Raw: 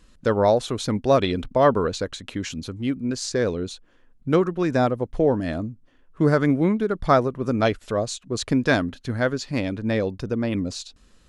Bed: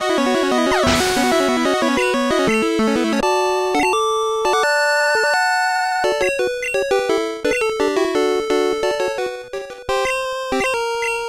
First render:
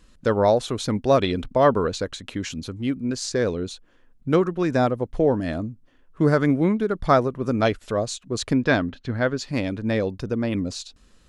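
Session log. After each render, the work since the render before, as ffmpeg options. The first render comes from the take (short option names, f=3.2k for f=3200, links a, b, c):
-filter_complex "[0:a]asettb=1/sr,asplit=3[a][b][c];[a]atrim=end=8.534[d];[b]atrim=start=8.53:end=9.38,asetpts=PTS-STARTPTS,afade=t=in:d=0.004:c=qsin,afade=t=out:st=0.846:d=0.004:c=qsin,lowpass=4.3k[e];[c]atrim=start=9.376[f];[d][e]acrossfade=d=0.004:c1=hsin:c2=qsin[g];[g][f]acrossfade=d=0.004:c1=qsin:c2=hsin"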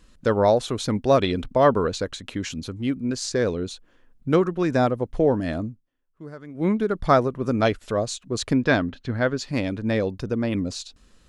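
-filter_complex "[0:a]asplit=3[a][b][c];[a]atrim=end=5.83,asetpts=PTS-STARTPTS,afade=t=out:st=5.68:d=0.15:silence=0.0944061[d];[b]atrim=start=5.83:end=6.54,asetpts=PTS-STARTPTS,volume=-20.5dB[e];[c]atrim=start=6.54,asetpts=PTS-STARTPTS,afade=t=in:d=0.15:silence=0.0944061[f];[d][e][f]concat=n=3:v=0:a=1"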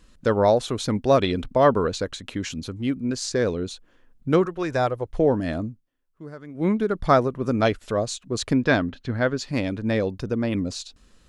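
-filter_complex "[0:a]asettb=1/sr,asplit=3[a][b][c];[a]atrim=end=4.454[d];[b]atrim=start=4.45:end=5.19,asetpts=PTS-STARTPTS,afade=t=in:d=0.004:c=qsin,afade=t=out:st=0.736:d=0.004:c=qsin,equalizer=f=220:t=o:w=0.77:g=-14.5[e];[c]atrim=start=5.186[f];[d][e]acrossfade=d=0.004:c1=hsin:c2=qsin[g];[g][f]acrossfade=d=0.004:c1=qsin:c2=hsin"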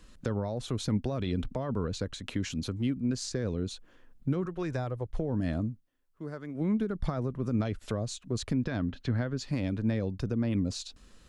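-filter_complex "[0:a]alimiter=limit=-16dB:level=0:latency=1:release=42,acrossover=split=220[a][b];[b]acompressor=threshold=-35dB:ratio=5[c];[a][c]amix=inputs=2:normalize=0"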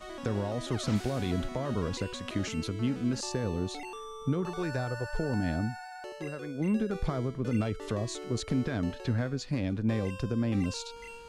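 -filter_complex "[1:a]volume=-25dB[a];[0:a][a]amix=inputs=2:normalize=0"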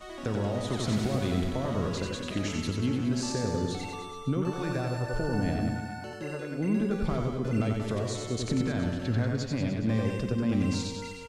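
-af "aecho=1:1:90|189|297.9|417.7|549.5:0.631|0.398|0.251|0.158|0.1"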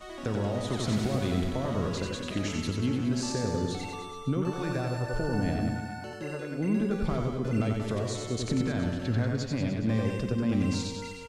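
-af anull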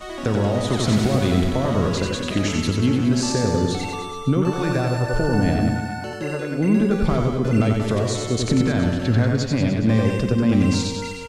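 -af "volume=9.5dB"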